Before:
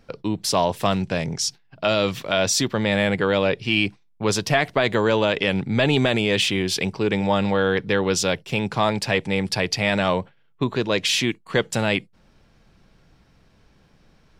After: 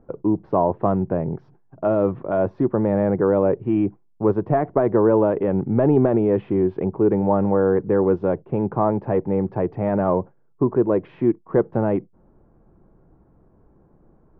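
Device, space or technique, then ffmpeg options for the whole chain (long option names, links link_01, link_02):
under water: -af "lowpass=frequency=1100:width=0.5412,lowpass=frequency=1100:width=1.3066,equalizer=frequency=350:width_type=o:width=0.53:gain=7.5,volume=1dB"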